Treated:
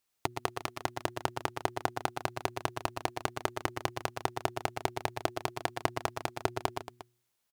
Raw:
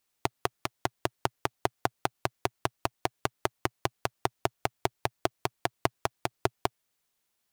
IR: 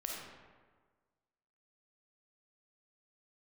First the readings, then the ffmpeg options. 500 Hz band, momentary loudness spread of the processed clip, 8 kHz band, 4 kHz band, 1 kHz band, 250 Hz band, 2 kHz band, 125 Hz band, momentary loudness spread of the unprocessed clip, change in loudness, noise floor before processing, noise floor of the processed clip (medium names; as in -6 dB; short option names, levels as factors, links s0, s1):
-1.5 dB, 3 LU, -1.5 dB, -1.5 dB, -1.5 dB, -2.0 dB, -1.5 dB, -1.5 dB, 2 LU, -1.5 dB, -79 dBFS, -80 dBFS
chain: -filter_complex "[0:a]bandreject=f=120.7:t=h:w=4,bandreject=f=241.4:t=h:w=4,bandreject=f=362.1:t=h:w=4,asplit=2[s0][s1];[s1]aecho=0:1:112|120|228|354:0.126|0.422|0.188|0.15[s2];[s0][s2]amix=inputs=2:normalize=0,volume=0.75"